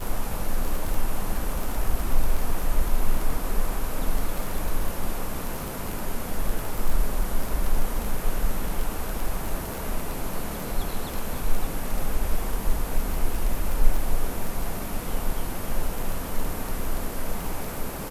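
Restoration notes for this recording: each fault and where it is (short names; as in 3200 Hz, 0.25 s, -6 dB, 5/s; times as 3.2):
crackle 18/s -25 dBFS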